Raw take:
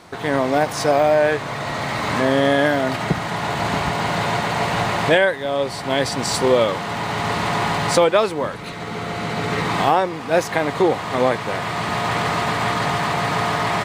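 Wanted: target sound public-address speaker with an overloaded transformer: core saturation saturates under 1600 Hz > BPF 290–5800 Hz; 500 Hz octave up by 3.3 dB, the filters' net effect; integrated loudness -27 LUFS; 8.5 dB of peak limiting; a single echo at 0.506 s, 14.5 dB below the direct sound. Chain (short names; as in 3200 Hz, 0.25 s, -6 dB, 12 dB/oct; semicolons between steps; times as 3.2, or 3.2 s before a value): bell 500 Hz +4.5 dB; limiter -9 dBFS; echo 0.506 s -14.5 dB; core saturation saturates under 1600 Hz; BPF 290–5800 Hz; gain -3 dB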